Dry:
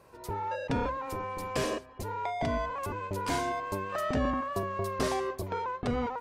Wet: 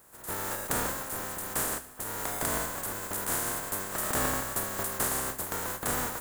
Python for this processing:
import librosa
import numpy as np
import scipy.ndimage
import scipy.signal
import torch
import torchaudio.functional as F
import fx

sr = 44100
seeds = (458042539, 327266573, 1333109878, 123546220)

y = fx.spec_flatten(x, sr, power=0.18)
y = fx.band_shelf(y, sr, hz=3600.0, db=-11.5, octaves=1.7)
y = fx.echo_feedback(y, sr, ms=77, feedback_pct=55, wet_db=-16.5)
y = y * librosa.db_to_amplitude(2.0)